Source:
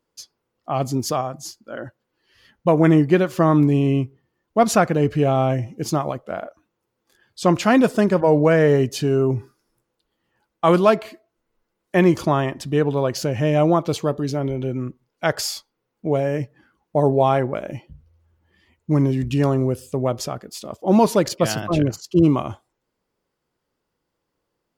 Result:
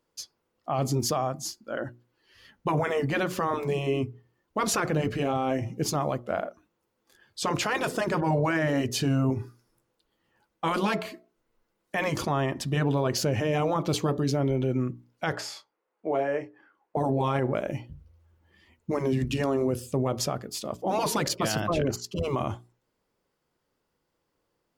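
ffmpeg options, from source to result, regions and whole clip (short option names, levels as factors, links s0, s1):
-filter_complex "[0:a]asettb=1/sr,asplit=3[s0][s1][s2];[s0]atrim=end=15.364[s3];[s1]atrim=start=15.36:end=16.97,asetpts=PTS-STARTPTS,afade=t=in:d=0.004:c=qsin,afade=t=out:st=1.606:d=0.004:c=qsin,lowpass=10000,acrossover=split=350 2400:gain=0.0708 1 0.224[s4][s5][s6];[s4][s5][s6]amix=inputs=3:normalize=0,asplit=2[s7][s8];[s8]adelay=29,volume=0.316[s9];[s7][s9]amix=inputs=2:normalize=0,atrim=end_sample=71001[s10];[s2]atrim=start=16.966[s11];[s3][s10]acrossfade=d=0.004:c1=hsin:c2=qsin[s12];[s12][s11]acrossfade=d=0.004:c1=qsin:c2=hsin,afftfilt=real='re*lt(hypot(re,im),0.891)':imag='im*lt(hypot(re,im),0.891)':win_size=1024:overlap=0.75,bandreject=f=60:t=h:w=6,bandreject=f=120:t=h:w=6,bandreject=f=180:t=h:w=6,bandreject=f=240:t=h:w=6,bandreject=f=300:t=h:w=6,bandreject=f=360:t=h:w=6,bandreject=f=420:t=h:w=6,alimiter=limit=0.133:level=0:latency=1:release=15"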